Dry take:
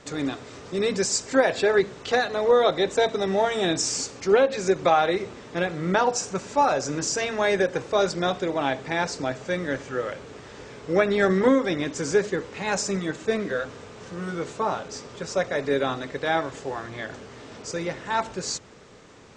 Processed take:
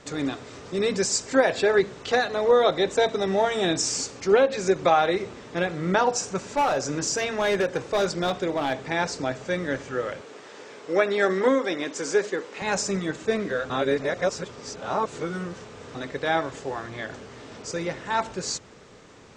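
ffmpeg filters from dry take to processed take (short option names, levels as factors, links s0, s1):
-filter_complex "[0:a]asettb=1/sr,asplit=3[s0][s1][s2];[s0]atrim=end=6.494[s3];[s1]atrim=start=6.49:end=8.91,asetpts=PTS-STARTPTS,afade=t=in:d=0.004:c=qsin,afade=t=out:st=2.416:d=0.004:c=qsin,asoftclip=type=hard:threshold=0.126[s4];[s2]atrim=start=8.906[s5];[s3][s4]acrossfade=d=0.004:c1=hsin:c2=qsin[s6];[s6][s5]acrossfade=d=0.004:c1=qsin:c2=hsin,asettb=1/sr,asplit=3[s7][s8][s9];[s7]atrim=end=10.214[s10];[s8]atrim=start=10.21:end=12.62,asetpts=PTS-STARTPTS,afade=t=in:d=0.004:c=qsin,afade=t=out:st=2.406:d=0.004:c=qsin,highpass=310[s11];[s9]atrim=start=12.616[s12];[s10][s11]acrossfade=d=0.004:c1=hsin:c2=qsin[s13];[s13][s12]acrossfade=d=0.004:c1=qsin:c2=hsin,asplit=3[s14][s15][s16];[s14]atrim=end=13.702[s17];[s15]atrim=start=13.698:end=15.952,asetpts=PTS-STARTPTS,areverse[s18];[s16]atrim=start=15.948[s19];[s17][s18]acrossfade=d=0.004:c1=hsin:c2=hsin[s20];[s20][s19]acrossfade=d=0.004:c1=hsin:c2=hsin"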